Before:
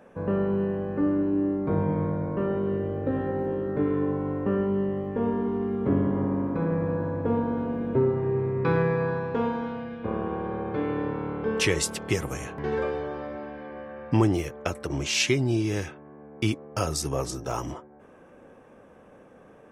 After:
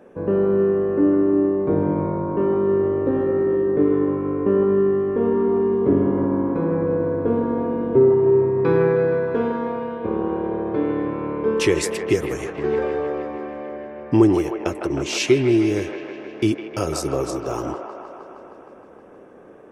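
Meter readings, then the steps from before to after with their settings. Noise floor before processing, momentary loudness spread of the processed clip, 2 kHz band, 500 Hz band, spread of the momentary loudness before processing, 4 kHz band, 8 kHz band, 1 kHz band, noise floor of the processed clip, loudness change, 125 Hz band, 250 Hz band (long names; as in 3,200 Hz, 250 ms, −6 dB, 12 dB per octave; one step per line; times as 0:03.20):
−52 dBFS, 10 LU, +2.0 dB, +9.5 dB, 9 LU, +0.5 dB, 0.0 dB, +4.0 dB, −44 dBFS, +7.0 dB, +1.0 dB, +6.5 dB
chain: parametric band 360 Hz +10.5 dB 0.88 octaves
on a send: delay with a band-pass on its return 156 ms, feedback 74%, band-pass 1,100 Hz, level −3.5 dB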